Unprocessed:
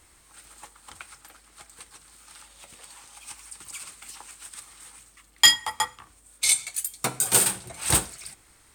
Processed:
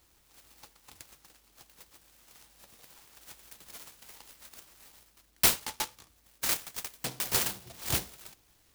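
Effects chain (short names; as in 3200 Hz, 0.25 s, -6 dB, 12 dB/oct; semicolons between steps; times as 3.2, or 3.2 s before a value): noise-modulated delay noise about 3800 Hz, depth 0.19 ms; gain -7.5 dB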